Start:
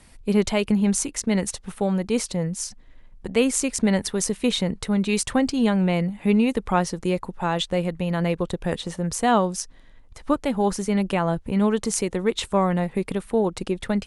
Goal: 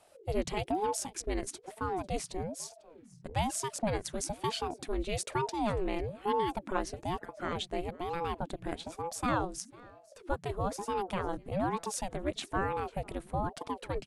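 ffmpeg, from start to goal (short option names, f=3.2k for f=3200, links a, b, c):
-af "aecho=1:1:497:0.0668,aeval=exprs='val(0)*sin(2*PI*410*n/s+410*0.65/1.1*sin(2*PI*1.1*n/s))':c=same,volume=-8.5dB"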